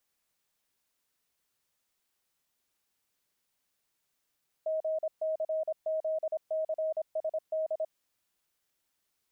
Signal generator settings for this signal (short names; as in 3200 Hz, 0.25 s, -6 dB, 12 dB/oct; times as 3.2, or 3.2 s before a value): Morse "GCZCSD" 26 wpm 632 Hz -28 dBFS